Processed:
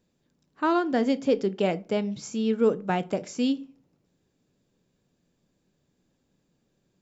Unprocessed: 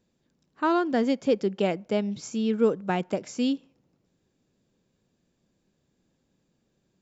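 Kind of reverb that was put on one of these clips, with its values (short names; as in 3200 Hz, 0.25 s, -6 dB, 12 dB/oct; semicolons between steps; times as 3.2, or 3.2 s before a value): shoebox room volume 150 m³, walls furnished, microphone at 0.33 m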